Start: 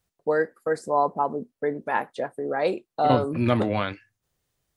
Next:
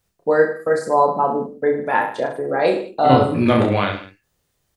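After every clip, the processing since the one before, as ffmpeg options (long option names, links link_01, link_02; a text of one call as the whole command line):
ffmpeg -i in.wav -af "aecho=1:1:30|64.5|104.2|149.8|202.3:0.631|0.398|0.251|0.158|0.1,volume=5dB" out.wav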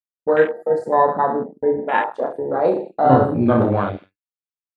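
ffmpeg -i in.wav -af "afwtdn=0.0891,agate=range=-33dB:threshold=-36dB:ratio=3:detection=peak" out.wav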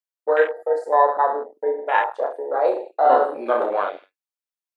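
ffmpeg -i in.wav -af "highpass=frequency=460:width=0.5412,highpass=frequency=460:width=1.3066" out.wav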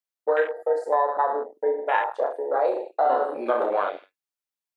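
ffmpeg -i in.wav -af "acompressor=threshold=-18dB:ratio=5" out.wav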